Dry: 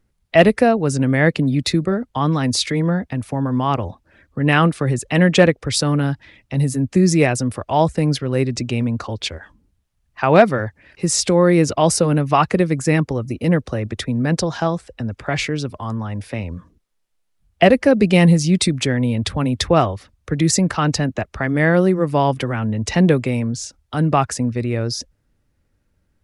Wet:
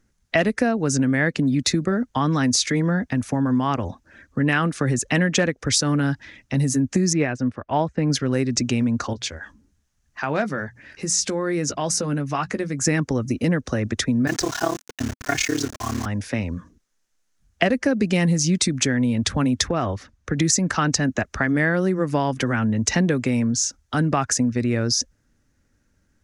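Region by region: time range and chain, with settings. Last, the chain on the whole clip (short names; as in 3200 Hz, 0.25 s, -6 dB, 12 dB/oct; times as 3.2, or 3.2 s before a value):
7.13–8.1 LPF 2800 Hz + upward expander, over -36 dBFS
9.13–12.82 notches 60/120/180 Hz + compressor 1.5:1, threshold -40 dBFS + doubler 14 ms -11 dB
14.27–16.06 AM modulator 35 Hz, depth 90% + comb 2.8 ms, depth 87% + requantised 6-bit, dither none
19.68–20.38 high shelf 5800 Hz -10 dB + compressor 3:1, threshold -18 dBFS
whole clip: fifteen-band EQ 250 Hz +6 dB, 1600 Hz +7 dB, 6300 Hz +12 dB; compressor 5:1, threshold -16 dBFS; gain -1 dB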